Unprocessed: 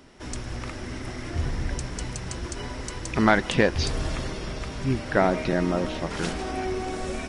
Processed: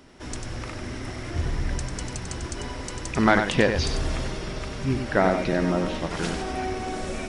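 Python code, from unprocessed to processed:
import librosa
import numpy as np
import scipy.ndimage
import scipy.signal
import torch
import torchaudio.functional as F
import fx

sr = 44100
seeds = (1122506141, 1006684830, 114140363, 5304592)

y = x + 10.0 ** (-7.0 / 20.0) * np.pad(x, (int(95 * sr / 1000.0), 0))[:len(x)]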